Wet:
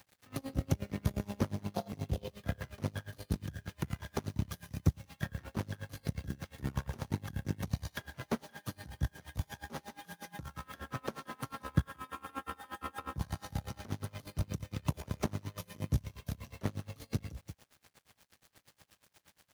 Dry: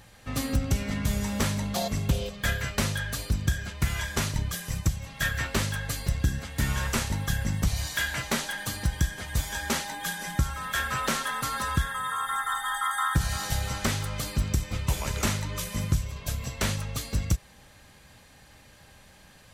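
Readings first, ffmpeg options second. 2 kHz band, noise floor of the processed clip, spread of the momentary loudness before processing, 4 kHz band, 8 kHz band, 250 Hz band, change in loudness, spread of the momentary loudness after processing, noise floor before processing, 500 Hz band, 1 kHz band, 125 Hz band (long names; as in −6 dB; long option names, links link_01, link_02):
−17.0 dB, −75 dBFS, 4 LU, −17.0 dB, −19.0 dB, −6.5 dB, −10.5 dB, 10 LU, −54 dBFS, −7.0 dB, −13.0 dB, −8.0 dB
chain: -filter_complex "[0:a]asplit=2[link_01][link_02];[link_02]aecho=0:1:179:0.188[link_03];[link_01][link_03]amix=inputs=2:normalize=0,aeval=exprs='0.335*(cos(1*acos(clip(val(0)/0.335,-1,1)))-cos(1*PI/2))+0.0473*(cos(4*acos(clip(val(0)/0.335,-1,1)))-cos(4*PI/2))+0.0211*(cos(7*acos(clip(val(0)/0.335,-1,1)))-cos(7*PI/2))+0.0133*(cos(8*acos(clip(val(0)/0.335,-1,1)))-cos(8*PI/2))':channel_layout=same,highpass=frequency=71:width=0.5412,highpass=frequency=71:width=1.3066,equalizer=frequency=7700:width_type=o:width=0.22:gain=-10.5,acrossover=split=1000[link_04][link_05];[link_05]acompressor=threshold=-43dB:ratio=6[link_06];[link_04][link_06]amix=inputs=2:normalize=0,acrusher=bits=8:mix=0:aa=0.000001,aeval=exprs='val(0)*pow(10,-26*(0.5-0.5*cos(2*PI*8.4*n/s))/20)':channel_layout=same"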